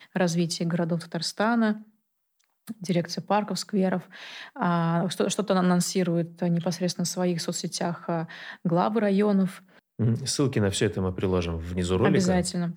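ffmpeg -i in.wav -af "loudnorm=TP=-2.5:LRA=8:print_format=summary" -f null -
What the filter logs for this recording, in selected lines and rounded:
Input Integrated:    -26.0 LUFS
Input True Peak:      -9.5 dBTP
Input LRA:             2.6 LU
Input Threshold:     -36.3 LUFS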